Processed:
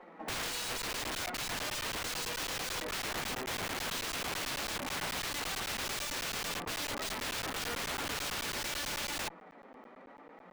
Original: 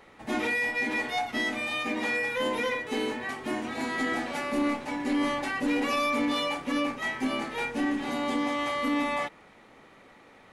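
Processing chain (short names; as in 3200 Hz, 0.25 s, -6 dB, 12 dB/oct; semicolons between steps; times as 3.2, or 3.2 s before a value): LPF 1600 Hz 12 dB/oct; flange 0.76 Hz, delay 5.5 ms, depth 2.8 ms, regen +44%; rippled Chebyshev high-pass 170 Hz, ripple 3 dB; wrapped overs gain 39 dB; crackling interface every 0.11 s, samples 512, zero, from 0.82; running maximum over 3 samples; gain +7.5 dB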